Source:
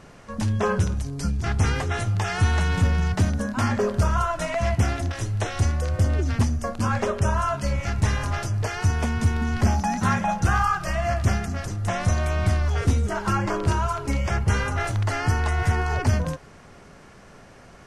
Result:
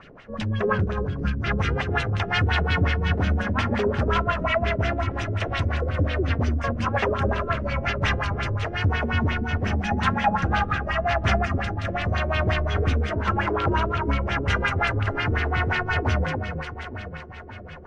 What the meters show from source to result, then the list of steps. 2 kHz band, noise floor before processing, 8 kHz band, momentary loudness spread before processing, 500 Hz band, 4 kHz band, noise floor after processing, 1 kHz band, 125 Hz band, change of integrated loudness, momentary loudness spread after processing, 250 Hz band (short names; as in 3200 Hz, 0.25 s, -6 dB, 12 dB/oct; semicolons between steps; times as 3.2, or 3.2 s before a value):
+4.0 dB, -48 dBFS, -12.5 dB, 4 LU, +2.0 dB, +3.5 dB, -39 dBFS, +1.0 dB, -2.0 dB, 0.0 dB, 5 LU, -0.5 dB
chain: tilt shelf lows -4.5 dB; in parallel at -8 dB: wrapped overs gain 17.5 dB; on the sum: rotary speaker horn 5 Hz, later 0.9 Hz, at 6.22; echo with dull and thin repeats by turns 0.288 s, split 1500 Hz, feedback 72%, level -5.5 dB; LFO low-pass sine 5.6 Hz 360–3400 Hz